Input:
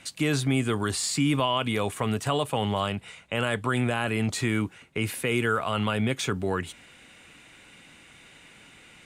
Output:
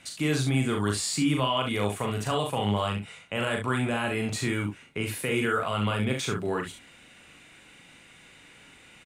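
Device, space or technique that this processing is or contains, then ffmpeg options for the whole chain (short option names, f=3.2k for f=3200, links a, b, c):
slapback doubling: -filter_complex "[0:a]asplit=3[a][b][c];[b]adelay=39,volume=-4dB[d];[c]adelay=68,volume=-7.5dB[e];[a][d][e]amix=inputs=3:normalize=0,volume=-3dB"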